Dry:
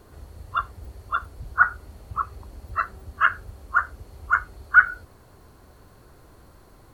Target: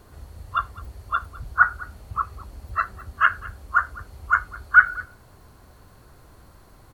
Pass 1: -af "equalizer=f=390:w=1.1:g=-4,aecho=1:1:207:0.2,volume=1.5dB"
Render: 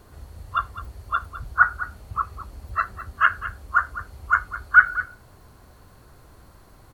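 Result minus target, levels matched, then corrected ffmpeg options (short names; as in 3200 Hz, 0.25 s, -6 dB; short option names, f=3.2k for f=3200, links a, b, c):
echo-to-direct +6.5 dB
-af "equalizer=f=390:w=1.1:g=-4,aecho=1:1:207:0.0944,volume=1.5dB"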